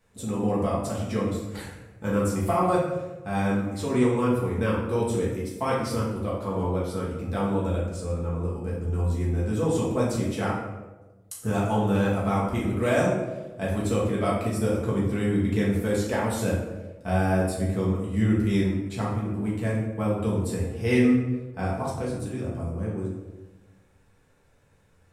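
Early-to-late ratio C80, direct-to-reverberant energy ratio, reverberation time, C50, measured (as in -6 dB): 5.0 dB, -6.0 dB, 1.2 s, 2.0 dB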